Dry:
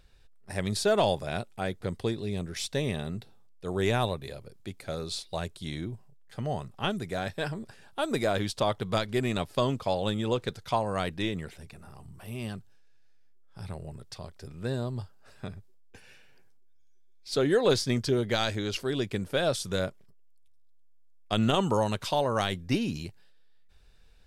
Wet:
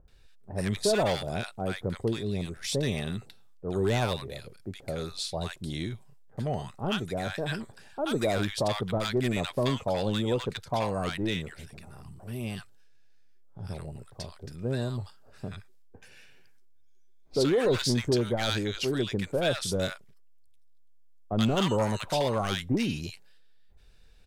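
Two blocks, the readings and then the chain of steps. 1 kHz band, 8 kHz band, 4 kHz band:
−2.0 dB, +1.5 dB, +0.5 dB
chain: gain into a clipping stage and back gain 21 dB
multiband delay without the direct sound lows, highs 80 ms, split 1,000 Hz
level +1.5 dB

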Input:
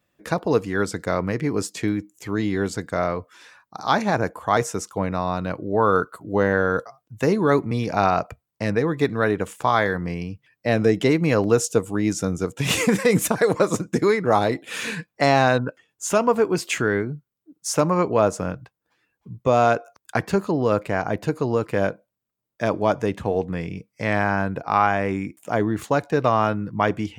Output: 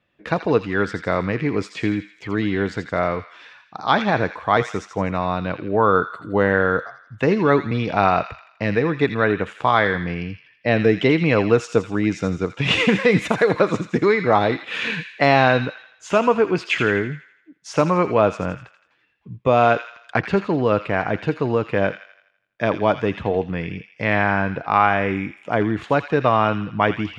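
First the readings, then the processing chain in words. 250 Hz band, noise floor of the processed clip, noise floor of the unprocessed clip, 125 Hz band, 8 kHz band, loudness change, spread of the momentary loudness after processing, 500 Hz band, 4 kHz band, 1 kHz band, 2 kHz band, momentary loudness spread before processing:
+1.5 dB, −59 dBFS, −82 dBFS, +1.5 dB, −12.0 dB, +2.0 dB, 9 LU, +1.5 dB, +3.5 dB, +2.5 dB, +4.5 dB, 10 LU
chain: low-pass with resonance 3,000 Hz, resonance Q 1.5
on a send: delay with a high-pass on its return 83 ms, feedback 49%, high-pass 1,900 Hz, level −6.5 dB
on the sum: level +1.5 dB

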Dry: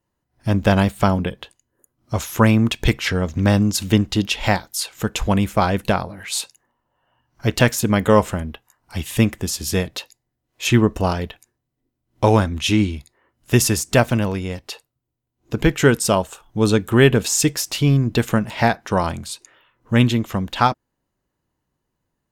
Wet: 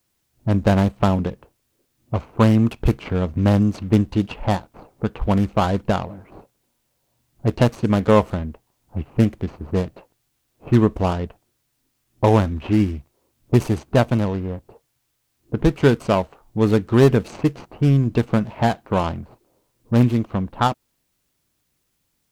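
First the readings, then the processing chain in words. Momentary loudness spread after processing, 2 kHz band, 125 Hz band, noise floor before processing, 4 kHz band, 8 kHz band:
12 LU, −8.0 dB, 0.0 dB, −78 dBFS, −10.0 dB, −18.5 dB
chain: running median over 25 samples
low-pass that shuts in the quiet parts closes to 570 Hz, open at −14 dBFS
bit-depth reduction 12 bits, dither triangular

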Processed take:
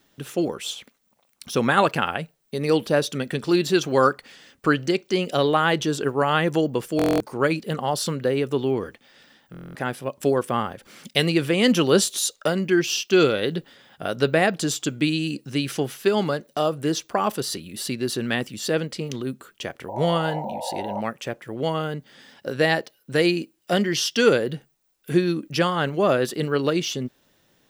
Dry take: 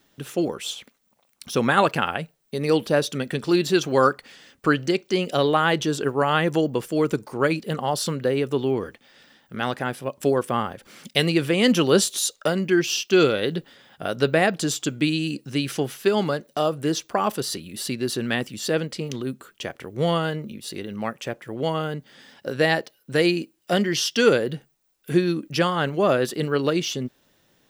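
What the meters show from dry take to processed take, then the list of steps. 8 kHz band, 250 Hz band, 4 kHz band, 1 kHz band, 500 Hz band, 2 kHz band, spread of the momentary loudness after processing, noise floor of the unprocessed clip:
0.0 dB, 0.0 dB, 0.0 dB, 0.0 dB, 0.0 dB, 0.0 dB, 12 LU, −66 dBFS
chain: sound drawn into the spectrogram noise, 0:19.88–0:21.01, 490–980 Hz −31 dBFS
buffer that repeats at 0:06.97/0:09.52, samples 1,024, times 9

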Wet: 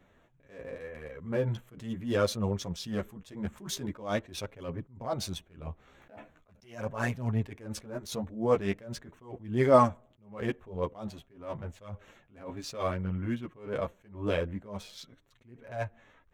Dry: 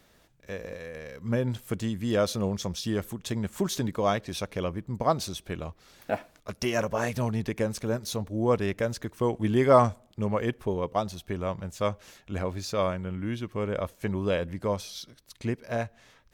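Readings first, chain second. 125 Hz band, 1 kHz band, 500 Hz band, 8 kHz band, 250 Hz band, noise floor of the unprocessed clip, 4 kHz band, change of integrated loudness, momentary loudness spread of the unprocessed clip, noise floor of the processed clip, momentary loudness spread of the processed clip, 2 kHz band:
−4.0 dB, −4.0 dB, −4.0 dB, −5.0 dB, −5.0 dB, −62 dBFS, −4.5 dB, −3.5 dB, 12 LU, −65 dBFS, 17 LU, −4.0 dB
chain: adaptive Wiener filter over 9 samples
multi-voice chorus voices 2, 0.42 Hz, delay 11 ms, depth 3.8 ms
level that may rise only so fast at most 130 dB per second
level +2 dB

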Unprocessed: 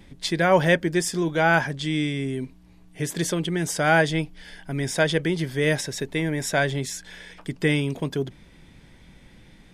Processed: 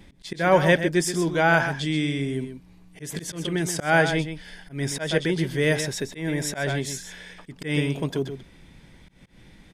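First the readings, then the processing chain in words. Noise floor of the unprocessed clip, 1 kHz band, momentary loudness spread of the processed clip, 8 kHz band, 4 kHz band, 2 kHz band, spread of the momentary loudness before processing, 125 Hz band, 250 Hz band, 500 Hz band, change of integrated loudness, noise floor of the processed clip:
−52 dBFS, −0.5 dB, 18 LU, −0.5 dB, −1.0 dB, −0.5 dB, 14 LU, −0.5 dB, −0.5 dB, −0.5 dB, −0.5 dB, −52 dBFS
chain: single-tap delay 128 ms −9.5 dB
volume swells 146 ms

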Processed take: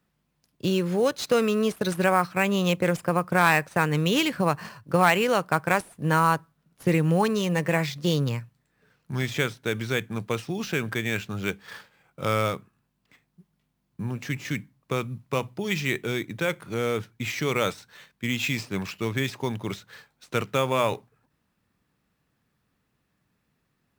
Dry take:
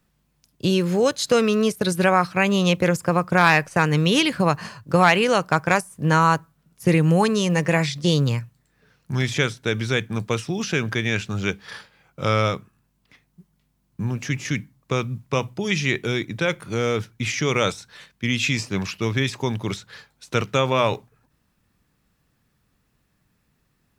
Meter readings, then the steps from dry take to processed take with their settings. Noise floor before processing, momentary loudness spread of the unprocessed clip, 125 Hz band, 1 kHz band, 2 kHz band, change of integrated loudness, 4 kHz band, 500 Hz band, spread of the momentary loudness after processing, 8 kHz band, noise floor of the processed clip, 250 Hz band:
−69 dBFS, 10 LU, −5.5 dB, −3.5 dB, −4.0 dB, −4.0 dB, −5.5 dB, −3.5 dB, 10 LU, −5.5 dB, −75 dBFS, −4.5 dB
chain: low-shelf EQ 65 Hz −12 dB
in parallel at −4 dB: sample-rate reduction 10,000 Hz, jitter 0%
on the sum: level −7.5 dB

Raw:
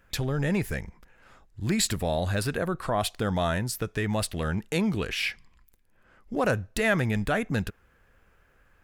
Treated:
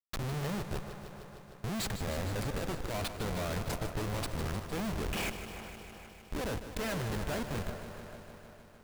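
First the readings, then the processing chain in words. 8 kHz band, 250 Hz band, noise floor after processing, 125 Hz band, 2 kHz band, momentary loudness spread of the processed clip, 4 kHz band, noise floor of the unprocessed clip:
−8.5 dB, −9.0 dB, −55 dBFS, −7.5 dB, −10.0 dB, 14 LU, −7.5 dB, −63 dBFS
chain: comparator with hysteresis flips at −28 dBFS
delay with a band-pass on its return 397 ms, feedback 49%, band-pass 900 Hz, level −10.5 dB
feedback echo at a low word length 153 ms, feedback 80%, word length 10 bits, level −11 dB
level −5.5 dB

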